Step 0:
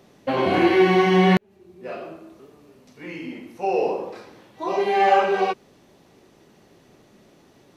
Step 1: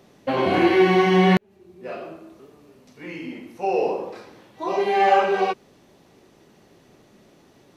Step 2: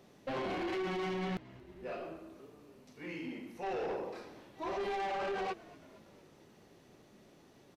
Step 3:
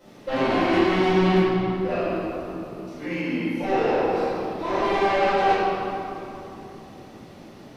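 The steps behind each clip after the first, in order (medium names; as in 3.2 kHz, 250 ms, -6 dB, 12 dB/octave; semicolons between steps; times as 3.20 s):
no audible change
peak limiter -16 dBFS, peak gain reduction 10.5 dB; saturation -26 dBFS, distortion -10 dB; frequency-shifting echo 230 ms, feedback 61%, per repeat -60 Hz, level -20.5 dB; trim -7 dB
reverberation RT60 2.9 s, pre-delay 3 ms, DRR -13.5 dB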